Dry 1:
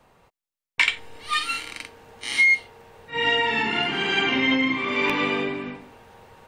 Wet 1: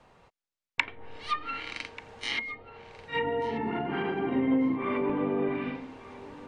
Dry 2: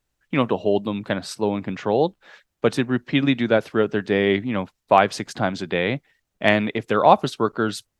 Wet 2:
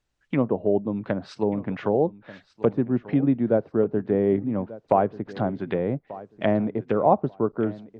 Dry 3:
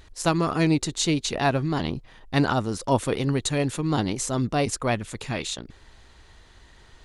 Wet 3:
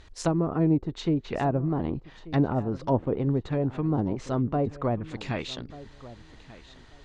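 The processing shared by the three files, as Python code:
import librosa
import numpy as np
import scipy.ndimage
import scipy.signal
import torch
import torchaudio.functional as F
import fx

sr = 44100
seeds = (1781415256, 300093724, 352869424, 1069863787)

y = scipy.signal.sosfilt(scipy.signal.butter(2, 6900.0, 'lowpass', fs=sr, output='sos'), x)
y = fx.env_lowpass_down(y, sr, base_hz=660.0, full_db=-20.0)
y = fx.echo_feedback(y, sr, ms=1188, feedback_pct=19, wet_db=-18.0)
y = y * librosa.db_to_amplitude(-1.0)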